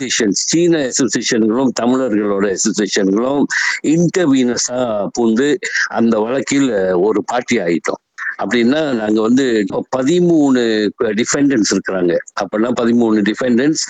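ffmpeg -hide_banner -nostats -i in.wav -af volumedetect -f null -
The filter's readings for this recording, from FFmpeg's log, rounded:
mean_volume: -14.6 dB
max_volume: -5.6 dB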